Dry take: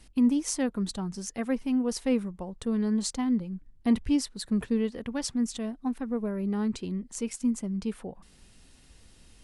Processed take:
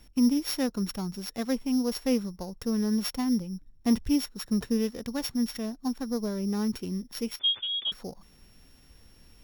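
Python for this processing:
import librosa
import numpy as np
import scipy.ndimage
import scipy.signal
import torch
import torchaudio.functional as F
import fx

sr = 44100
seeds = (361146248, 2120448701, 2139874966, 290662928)

y = np.r_[np.sort(x[:len(x) // 8 * 8].reshape(-1, 8), axis=1).ravel(), x[len(x) // 8 * 8:]]
y = fx.freq_invert(y, sr, carrier_hz=3500, at=(7.39, 7.92))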